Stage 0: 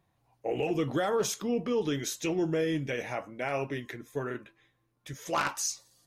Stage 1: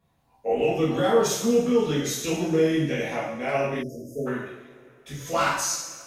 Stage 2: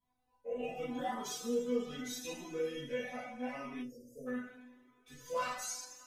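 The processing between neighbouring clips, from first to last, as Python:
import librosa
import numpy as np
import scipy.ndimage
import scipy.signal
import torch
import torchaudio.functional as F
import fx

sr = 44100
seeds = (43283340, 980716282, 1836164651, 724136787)

y1 = fx.rev_double_slope(x, sr, seeds[0], early_s=0.74, late_s=3.3, knee_db=-20, drr_db=-9.0)
y1 = fx.spec_erase(y1, sr, start_s=3.83, length_s=0.44, low_hz=680.0, high_hz=4700.0)
y1 = F.gain(torch.from_numpy(y1), -3.5).numpy()
y2 = fx.comb_fb(y1, sr, f0_hz=250.0, decay_s=0.16, harmonics='all', damping=0.0, mix_pct=100)
y2 = fx.comb_cascade(y2, sr, direction='rising', hz=0.82)
y2 = F.gain(torch.from_numpy(y2), 1.5).numpy()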